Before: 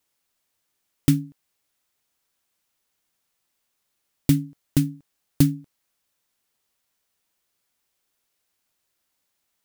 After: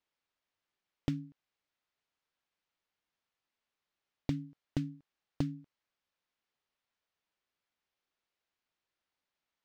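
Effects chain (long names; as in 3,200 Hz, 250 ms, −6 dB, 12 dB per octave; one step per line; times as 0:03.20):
high-frequency loss of the air 170 metres
downward compressor, threshold −19 dBFS, peak gain reduction 7.5 dB
low-shelf EQ 450 Hz −4.5 dB
level −6 dB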